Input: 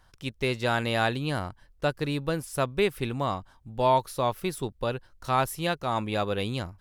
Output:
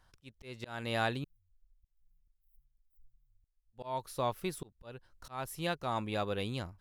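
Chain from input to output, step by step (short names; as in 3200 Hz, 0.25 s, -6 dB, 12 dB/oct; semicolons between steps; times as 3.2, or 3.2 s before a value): 1.24–3.73 inverse Chebyshev band-stop 220–6300 Hz, stop band 80 dB; auto swell 0.298 s; gain -6.5 dB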